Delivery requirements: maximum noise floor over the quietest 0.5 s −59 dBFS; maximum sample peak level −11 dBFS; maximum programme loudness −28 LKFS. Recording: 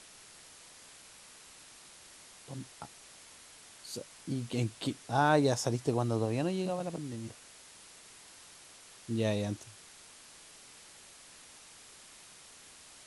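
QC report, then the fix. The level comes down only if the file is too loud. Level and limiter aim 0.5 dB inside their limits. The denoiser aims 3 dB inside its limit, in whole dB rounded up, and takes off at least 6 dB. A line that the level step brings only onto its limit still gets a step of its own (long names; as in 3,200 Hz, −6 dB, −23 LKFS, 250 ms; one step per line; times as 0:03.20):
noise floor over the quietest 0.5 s −55 dBFS: out of spec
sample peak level −14.0 dBFS: in spec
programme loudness −33.0 LKFS: in spec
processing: broadband denoise 7 dB, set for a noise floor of −55 dBFS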